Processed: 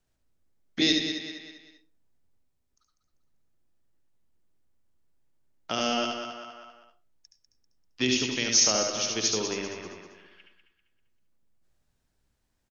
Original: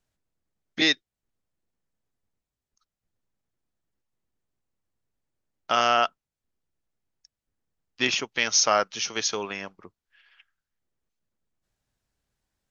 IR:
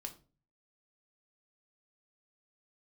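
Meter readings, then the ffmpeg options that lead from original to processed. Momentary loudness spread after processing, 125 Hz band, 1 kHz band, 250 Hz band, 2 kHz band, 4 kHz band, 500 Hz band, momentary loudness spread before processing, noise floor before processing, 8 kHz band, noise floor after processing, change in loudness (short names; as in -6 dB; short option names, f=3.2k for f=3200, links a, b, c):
20 LU, +5.0 dB, -9.5 dB, +4.5 dB, -5.5 dB, 0.0 dB, -2.0 dB, 14 LU, under -85 dBFS, n/a, -76 dBFS, -2.0 dB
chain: -filter_complex "[0:a]bandreject=f=50:t=h:w=6,bandreject=f=100:t=h:w=6,bandreject=f=150:t=h:w=6,bandreject=f=200:t=h:w=6,aecho=1:1:196|392|588|784:0.335|0.121|0.0434|0.0156,asplit=2[a][b];[1:a]atrim=start_sample=2205,adelay=71[c];[b][c]afir=irnorm=-1:irlink=0,volume=0dB[d];[a][d]amix=inputs=2:normalize=0,acrossover=split=470|3000[e][f][g];[f]acompressor=threshold=-43dB:ratio=2.5[h];[e][h][g]amix=inputs=3:normalize=0,lowshelf=f=420:g=4"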